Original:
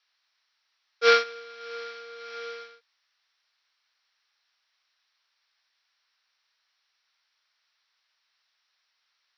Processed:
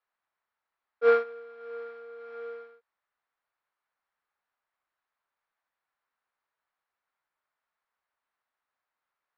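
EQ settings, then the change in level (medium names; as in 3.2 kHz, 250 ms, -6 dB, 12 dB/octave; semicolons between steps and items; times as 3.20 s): low-pass 1 kHz 12 dB/octave; bass shelf 210 Hz +5 dB; 0.0 dB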